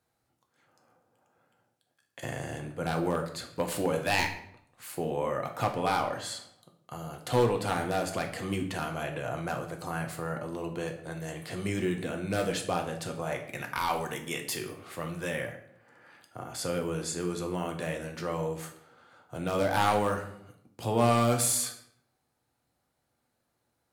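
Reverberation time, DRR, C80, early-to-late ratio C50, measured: 0.75 s, 3.0 dB, 12.5 dB, 9.0 dB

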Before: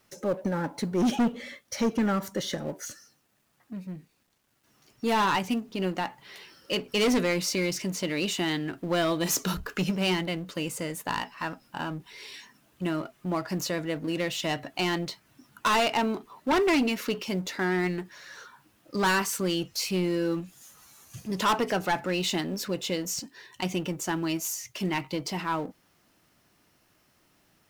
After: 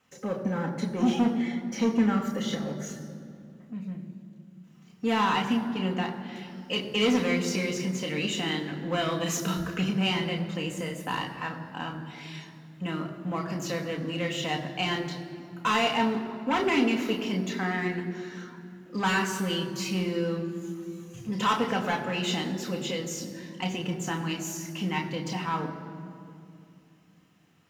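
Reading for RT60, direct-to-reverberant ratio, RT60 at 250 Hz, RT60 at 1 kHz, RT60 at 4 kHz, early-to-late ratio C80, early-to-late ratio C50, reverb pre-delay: 2.5 s, 1.5 dB, 3.9 s, 2.3 s, 1.5 s, 9.5 dB, 9.0 dB, 3 ms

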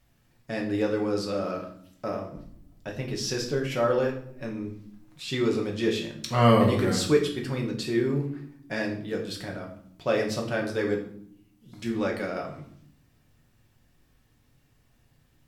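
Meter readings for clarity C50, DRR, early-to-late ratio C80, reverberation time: 8.5 dB, 0.0 dB, 12.0 dB, 0.65 s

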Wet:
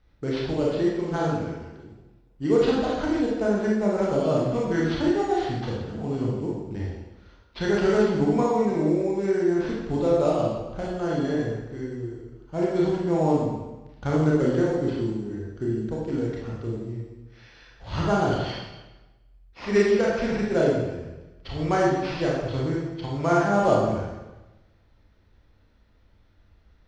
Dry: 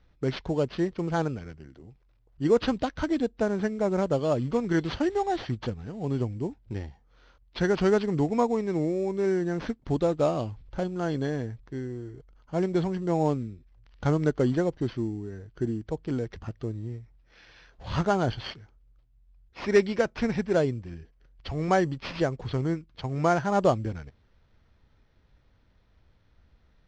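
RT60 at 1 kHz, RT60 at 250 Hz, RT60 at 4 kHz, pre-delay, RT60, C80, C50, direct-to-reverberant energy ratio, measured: 1.1 s, 1.1 s, 0.95 s, 25 ms, 1.1 s, 3.0 dB, 0.0 dB, -4.5 dB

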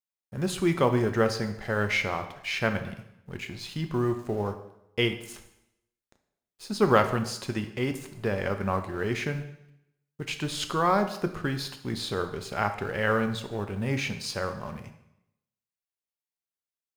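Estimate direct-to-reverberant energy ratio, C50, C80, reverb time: 7.0 dB, 10.5 dB, 13.0 dB, 0.80 s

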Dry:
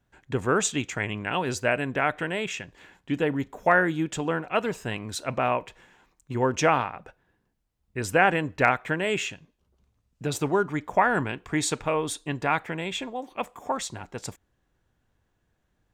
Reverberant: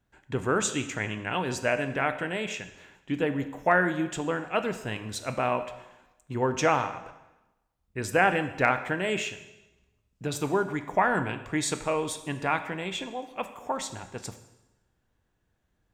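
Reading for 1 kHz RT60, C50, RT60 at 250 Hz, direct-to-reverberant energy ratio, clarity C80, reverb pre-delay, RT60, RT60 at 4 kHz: 1.0 s, 11.5 dB, 1.0 s, 9.0 dB, 13.5 dB, 4 ms, 1.0 s, 0.95 s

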